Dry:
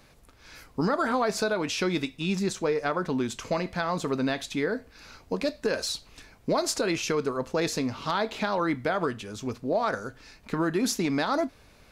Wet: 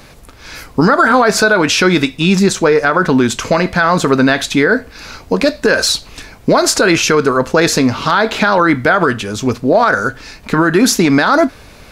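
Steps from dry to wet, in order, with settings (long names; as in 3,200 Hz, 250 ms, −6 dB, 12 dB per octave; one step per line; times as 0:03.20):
dynamic equaliser 1,500 Hz, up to +8 dB, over −47 dBFS, Q 2.9
boost into a limiter +18 dB
level −1 dB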